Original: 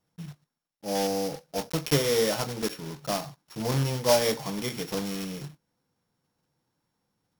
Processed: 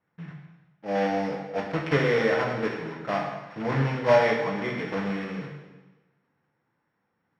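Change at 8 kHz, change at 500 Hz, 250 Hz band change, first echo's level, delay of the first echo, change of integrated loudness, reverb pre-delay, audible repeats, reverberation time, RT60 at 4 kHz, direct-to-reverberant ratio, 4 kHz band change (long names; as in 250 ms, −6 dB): below −20 dB, +2.5 dB, +2.0 dB, no echo audible, no echo audible, +1.5 dB, 6 ms, no echo audible, 1.2 s, 1.1 s, 0.5 dB, −7.5 dB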